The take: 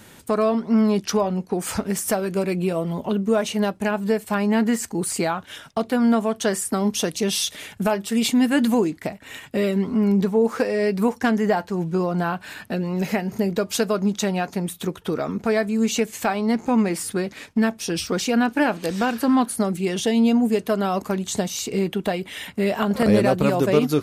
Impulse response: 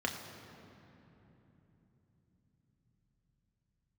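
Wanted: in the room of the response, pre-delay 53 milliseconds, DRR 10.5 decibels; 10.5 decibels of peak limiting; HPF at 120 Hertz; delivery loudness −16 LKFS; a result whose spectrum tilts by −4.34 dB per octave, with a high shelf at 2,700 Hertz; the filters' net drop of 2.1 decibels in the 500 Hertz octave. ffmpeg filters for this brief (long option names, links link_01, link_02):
-filter_complex "[0:a]highpass=120,equalizer=frequency=500:width_type=o:gain=-3,highshelf=frequency=2700:gain=9,alimiter=limit=-14dB:level=0:latency=1,asplit=2[link_01][link_02];[1:a]atrim=start_sample=2205,adelay=53[link_03];[link_02][link_03]afir=irnorm=-1:irlink=0,volume=-16dB[link_04];[link_01][link_04]amix=inputs=2:normalize=0,volume=8dB"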